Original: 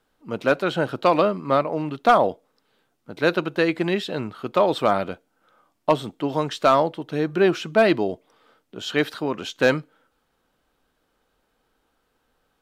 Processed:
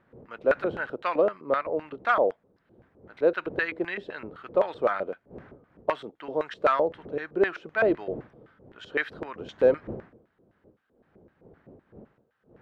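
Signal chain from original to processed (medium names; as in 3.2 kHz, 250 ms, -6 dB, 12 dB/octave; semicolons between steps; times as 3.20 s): wind noise 150 Hz -31 dBFS; LFO band-pass square 3.9 Hz 480–1700 Hz; trim +1 dB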